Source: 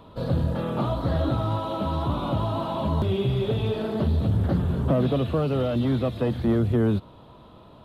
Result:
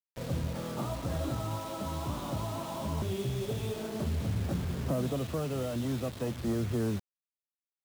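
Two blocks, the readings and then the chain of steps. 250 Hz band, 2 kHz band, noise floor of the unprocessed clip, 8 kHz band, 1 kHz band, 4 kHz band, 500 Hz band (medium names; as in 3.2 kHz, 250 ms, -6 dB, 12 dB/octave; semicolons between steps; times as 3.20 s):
-9.5 dB, -5.5 dB, -49 dBFS, no reading, -9.0 dB, -6.0 dB, -9.5 dB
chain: crossover distortion -49.5 dBFS; bit crusher 6-bit; trim -9 dB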